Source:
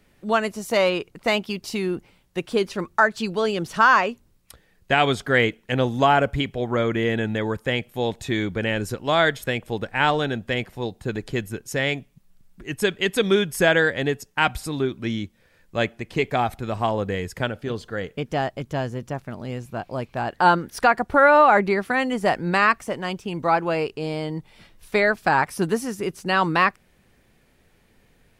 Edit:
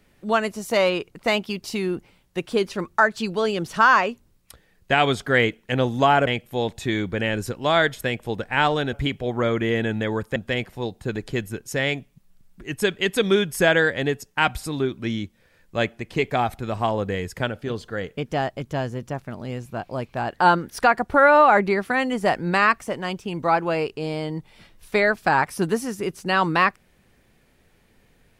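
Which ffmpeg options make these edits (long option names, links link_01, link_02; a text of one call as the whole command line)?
ffmpeg -i in.wav -filter_complex "[0:a]asplit=4[link_01][link_02][link_03][link_04];[link_01]atrim=end=6.272[link_05];[link_02]atrim=start=7.698:end=10.362[link_06];[link_03]atrim=start=6.268:end=7.702[link_07];[link_04]atrim=start=10.358[link_08];[link_05][link_06]acrossfade=duration=0.004:curve1=hsin:curve2=hsin[link_09];[link_09][link_07]acrossfade=duration=0.004:curve1=hsin:curve2=hsin[link_10];[link_10][link_08]acrossfade=duration=0.004:curve1=hsin:curve2=hsin" out.wav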